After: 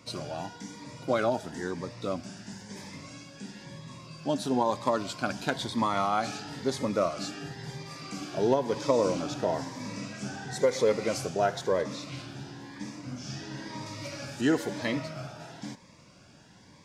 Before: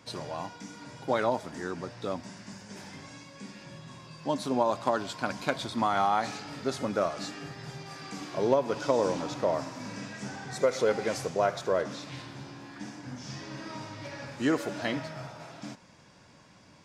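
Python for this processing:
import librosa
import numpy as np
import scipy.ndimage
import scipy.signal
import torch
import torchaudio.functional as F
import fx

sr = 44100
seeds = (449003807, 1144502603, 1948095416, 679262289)

y = fx.high_shelf(x, sr, hz=5900.0, db=11.5, at=(13.86, 14.41))
y = fx.notch_cascade(y, sr, direction='rising', hz=1.0)
y = y * librosa.db_to_amplitude(2.5)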